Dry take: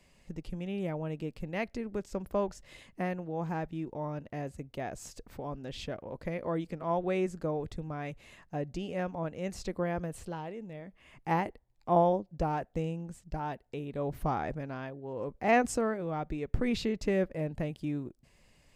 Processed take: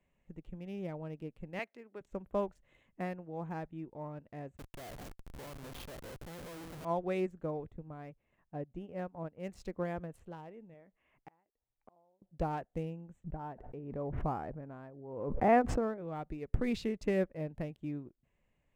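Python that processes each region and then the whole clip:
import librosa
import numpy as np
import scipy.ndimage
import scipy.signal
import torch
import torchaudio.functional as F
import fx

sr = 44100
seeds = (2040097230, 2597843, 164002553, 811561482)

y = fx.chain(x, sr, fx.bandpass_edges(low_hz=250.0, high_hz=3400.0),
    fx.tilt_eq(slope=2.5), at=(1.59, 2.01))
y = fx.chain(y, sr, fx.lowpass(hz=6300.0, slope=12),
    fx.echo_split(split_hz=480.0, low_ms=82, high_ms=141, feedback_pct=52, wet_db=-15.5),
    fx.schmitt(flips_db=-44.5), at=(4.57, 6.85))
y = fx.chain(y, sr, fx.high_shelf(hz=2500.0, db=-11.0),
    fx.transient(attack_db=0, sustain_db=-7), at=(7.71, 9.4))
y = fx.chain(y, sr, fx.bass_treble(bass_db=-7, treble_db=-9),
    fx.gate_flip(shuts_db=-30.0, range_db=-32), at=(10.74, 12.22))
y = fx.chain(y, sr, fx.lowpass(hz=1400.0, slope=12),
    fx.pre_swell(db_per_s=34.0), at=(13.24, 15.98))
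y = fx.wiener(y, sr, points=9)
y = fx.high_shelf(y, sr, hz=9600.0, db=5.5)
y = fx.upward_expand(y, sr, threshold_db=-47.0, expansion=1.5)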